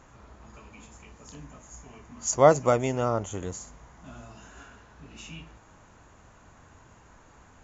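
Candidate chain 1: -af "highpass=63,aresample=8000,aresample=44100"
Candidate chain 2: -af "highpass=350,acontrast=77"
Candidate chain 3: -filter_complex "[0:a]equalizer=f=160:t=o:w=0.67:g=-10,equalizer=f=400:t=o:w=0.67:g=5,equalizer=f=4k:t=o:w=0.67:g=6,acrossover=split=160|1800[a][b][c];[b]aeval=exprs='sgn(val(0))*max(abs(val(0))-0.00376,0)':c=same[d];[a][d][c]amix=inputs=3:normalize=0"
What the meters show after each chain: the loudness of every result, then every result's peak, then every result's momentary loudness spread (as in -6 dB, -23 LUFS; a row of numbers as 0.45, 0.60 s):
-24.5, -20.0, -23.5 LUFS; -4.0, -3.0, -3.5 dBFS; 24, 23, 18 LU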